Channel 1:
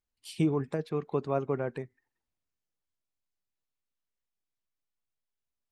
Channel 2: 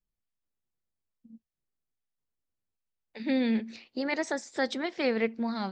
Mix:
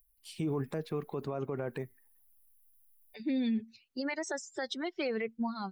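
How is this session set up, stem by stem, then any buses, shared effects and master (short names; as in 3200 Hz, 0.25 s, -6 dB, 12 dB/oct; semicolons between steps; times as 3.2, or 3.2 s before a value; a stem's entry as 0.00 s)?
-4.5 dB, 0.00 s, no send, dry
-2.0 dB, 0.00 s, no send, per-bin expansion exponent 2; upward compressor, threshold -44 dBFS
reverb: off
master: AGC gain up to 6 dB; limiter -25.5 dBFS, peak gain reduction 11 dB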